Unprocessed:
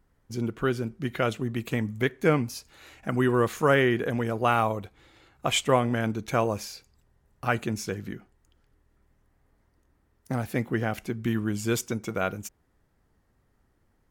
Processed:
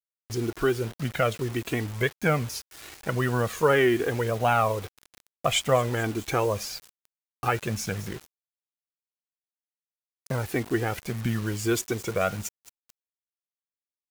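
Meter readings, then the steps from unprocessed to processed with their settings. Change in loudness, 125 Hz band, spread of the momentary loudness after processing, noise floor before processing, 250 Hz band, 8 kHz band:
+0.5 dB, +1.0 dB, 12 LU, -69 dBFS, -2.0 dB, +3.0 dB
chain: thin delay 0.217 s, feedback 67%, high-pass 4900 Hz, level -15 dB; in parallel at +2 dB: compressor 8:1, threshold -31 dBFS, peak gain reduction 15 dB; on the sum: flange 0.89 Hz, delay 1.2 ms, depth 1.8 ms, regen +8%; bit-crush 7-bit; gain +1 dB

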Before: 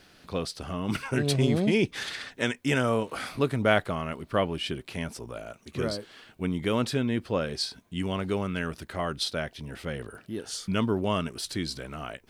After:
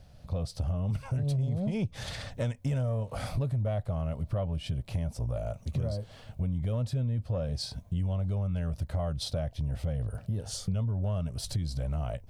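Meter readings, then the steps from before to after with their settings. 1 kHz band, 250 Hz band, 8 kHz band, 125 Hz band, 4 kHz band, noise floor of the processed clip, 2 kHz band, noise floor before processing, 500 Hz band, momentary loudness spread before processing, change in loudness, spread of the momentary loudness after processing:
-11.5 dB, -7.0 dB, -5.5 dB, +4.0 dB, -9.0 dB, -53 dBFS, -16.5 dB, -58 dBFS, -8.5 dB, 13 LU, -3.0 dB, 5 LU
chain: EQ curve 110 Hz 0 dB, 370 Hz -28 dB, 570 Hz -11 dB, 1500 Hz -28 dB, 2800 Hz -26 dB, 5800 Hz -22 dB; AGC gain up to 7 dB; in parallel at +1.5 dB: limiter -25 dBFS, peak gain reduction 8 dB; on the sum: compressor 6:1, threshold -34 dBFS, peak gain reduction 15.5 dB; soft clip -27.5 dBFS, distortion -23 dB; gain +7 dB

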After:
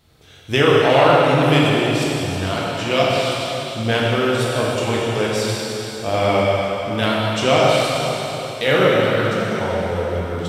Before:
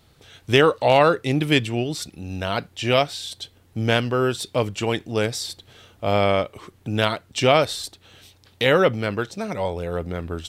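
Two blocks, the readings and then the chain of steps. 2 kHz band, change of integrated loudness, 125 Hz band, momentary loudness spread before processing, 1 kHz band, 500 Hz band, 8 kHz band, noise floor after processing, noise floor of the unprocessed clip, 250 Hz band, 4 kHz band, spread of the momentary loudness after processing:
+4.5 dB, +4.0 dB, +4.5 dB, 14 LU, +4.5 dB, +4.5 dB, +4.0 dB, -31 dBFS, -56 dBFS, +4.5 dB, +4.0 dB, 9 LU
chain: plate-style reverb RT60 3.8 s, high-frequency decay 0.95×, DRR -6 dB; gain -2.5 dB

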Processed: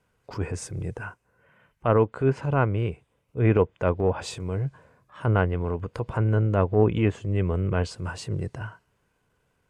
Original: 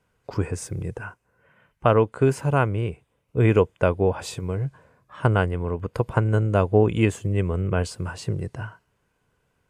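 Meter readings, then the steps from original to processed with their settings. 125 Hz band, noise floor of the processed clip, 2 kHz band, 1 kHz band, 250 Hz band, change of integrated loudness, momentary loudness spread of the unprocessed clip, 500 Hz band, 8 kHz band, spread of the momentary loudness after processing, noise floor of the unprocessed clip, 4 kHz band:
-1.5 dB, -72 dBFS, -3.5 dB, -3.0 dB, -2.0 dB, -2.0 dB, 13 LU, -2.5 dB, -3.5 dB, 13 LU, -72 dBFS, -2.5 dB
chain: treble ducked by the level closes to 2300 Hz, closed at -15 dBFS; transient shaper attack -8 dB, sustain 0 dB

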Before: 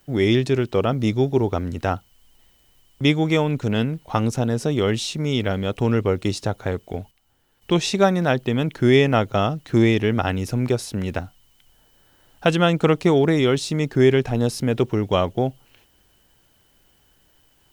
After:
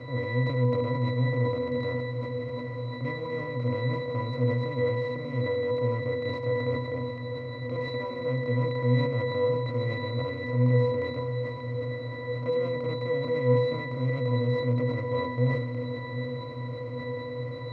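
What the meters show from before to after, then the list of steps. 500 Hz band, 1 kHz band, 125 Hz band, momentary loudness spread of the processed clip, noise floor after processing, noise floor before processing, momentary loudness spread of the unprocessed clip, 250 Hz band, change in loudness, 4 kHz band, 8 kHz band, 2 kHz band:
-6.0 dB, -9.0 dB, -3.5 dB, 9 LU, -36 dBFS, -60 dBFS, 9 LU, -11.5 dB, -8.0 dB, -12.5 dB, under -30 dB, -7.0 dB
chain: per-bin compression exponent 0.2; bell 230 Hz -9 dB 0.78 oct; in parallel at -11.5 dB: sample-rate reducer 6300 Hz; on the sum: octave resonator B, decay 0.48 s; on a send: diffused feedback echo 0.822 s, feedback 42%, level -11 dB; on the sum: sustainer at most 48 dB/s; gain -1.5 dB

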